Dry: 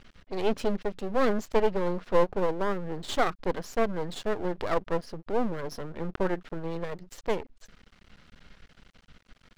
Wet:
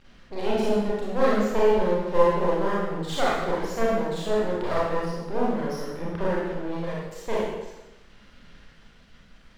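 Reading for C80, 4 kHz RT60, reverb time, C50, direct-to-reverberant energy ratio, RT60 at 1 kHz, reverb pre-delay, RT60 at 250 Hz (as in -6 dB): 2.0 dB, 0.95 s, 1.1 s, -1.0 dB, -7.0 dB, 1.1 s, 27 ms, 1.0 s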